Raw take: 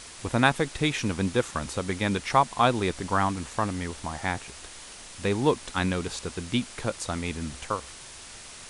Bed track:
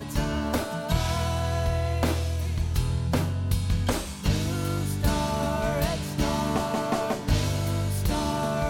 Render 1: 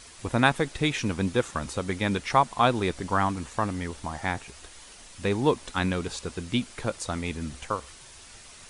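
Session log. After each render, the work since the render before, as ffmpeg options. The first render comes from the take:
-af "afftdn=nr=6:nf=-45"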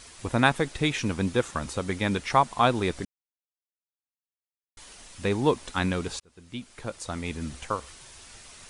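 -filter_complex "[0:a]asplit=4[s0][s1][s2][s3];[s0]atrim=end=3.05,asetpts=PTS-STARTPTS,afade=t=out:st=3.046:d=0.004:c=hsin[s4];[s1]atrim=start=3.05:end=4.77,asetpts=PTS-STARTPTS,volume=0[s5];[s2]atrim=start=4.77:end=6.2,asetpts=PTS-STARTPTS,afade=t=in:d=0.004:c=hsin,afade=t=out:st=1.426:d=0.004:c=hsin[s6];[s3]atrim=start=6.2,asetpts=PTS-STARTPTS,afade=t=in:d=1.25[s7];[s4][s5][s6][s7]concat=n=4:v=0:a=1"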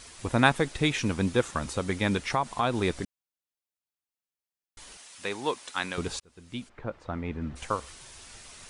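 -filter_complex "[0:a]asettb=1/sr,asplit=3[s0][s1][s2];[s0]atrim=end=2.174[s3];[s1]atrim=start=2.17:end=2.82,asetpts=PTS-STARTPTS,afade=t=in:d=0.004:c=qsin,afade=t=out:st=0.646:d=0.004:c=qsin,acompressor=threshold=0.0708:ratio=2.5:attack=3.2:release=140:knee=1:detection=peak[s4];[s2]atrim=start=2.816[s5];[s3][s4]acrossfade=d=0.004:c1=hsin:c2=qsin[s6];[s6][s5]acrossfade=d=0.004:c1=qsin:c2=hsin,asettb=1/sr,asplit=3[s7][s8][s9];[s7]atrim=end=4.974[s10];[s8]atrim=start=4.97:end=5.98,asetpts=PTS-STARTPTS,afade=t=in:d=0.004:c=qsin,afade=t=out:st=1.006:d=0.004:c=qsin,highpass=f=960:p=1[s11];[s9]atrim=start=5.976[s12];[s10][s11]acrossfade=d=0.004:c1=hsin:c2=qsin[s13];[s13][s12]acrossfade=d=0.004:c1=qsin:c2=hsin,asplit=3[s14][s15][s16];[s14]afade=t=out:st=6.68:d=0.02[s17];[s15]lowpass=1700,afade=t=in:st=6.68:d=0.02,afade=t=out:st=7.55:d=0.02[s18];[s16]afade=t=in:st=7.55:d=0.02[s19];[s17][s18][s19]amix=inputs=3:normalize=0"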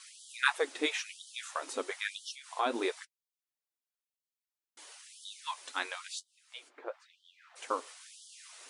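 -af "flanger=delay=4.4:depth=6.6:regen=-42:speed=1.7:shape=sinusoidal,afftfilt=real='re*gte(b*sr/1024,220*pow(3000/220,0.5+0.5*sin(2*PI*1*pts/sr)))':imag='im*gte(b*sr/1024,220*pow(3000/220,0.5+0.5*sin(2*PI*1*pts/sr)))':win_size=1024:overlap=0.75"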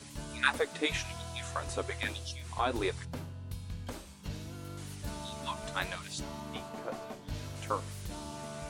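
-filter_complex "[1:a]volume=0.158[s0];[0:a][s0]amix=inputs=2:normalize=0"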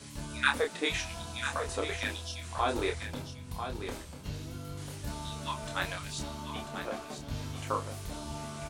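-filter_complex "[0:a]asplit=2[s0][s1];[s1]adelay=28,volume=0.596[s2];[s0][s2]amix=inputs=2:normalize=0,aecho=1:1:993:0.376"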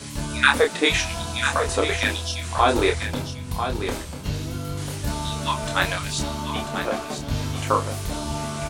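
-af "volume=3.76,alimiter=limit=0.794:level=0:latency=1"

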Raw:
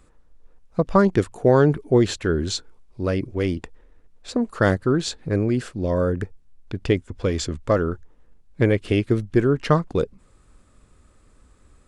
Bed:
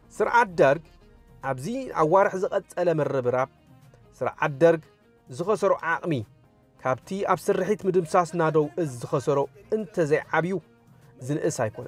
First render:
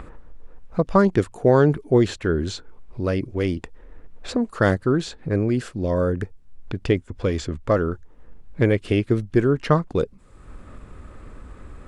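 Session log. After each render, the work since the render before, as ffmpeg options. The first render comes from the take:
-filter_complex "[0:a]acrossover=split=2800[s0][s1];[s0]acompressor=mode=upward:threshold=0.0562:ratio=2.5[s2];[s1]alimiter=level_in=1.33:limit=0.0631:level=0:latency=1:release=479,volume=0.75[s3];[s2][s3]amix=inputs=2:normalize=0"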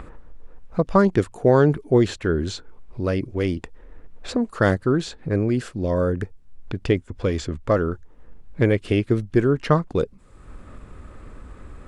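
-af anull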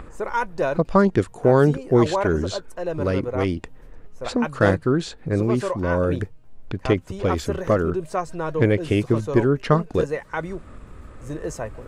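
-filter_complex "[1:a]volume=0.596[s0];[0:a][s0]amix=inputs=2:normalize=0"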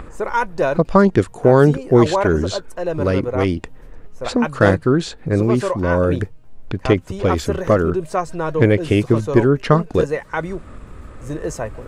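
-af "volume=1.68,alimiter=limit=0.891:level=0:latency=1"

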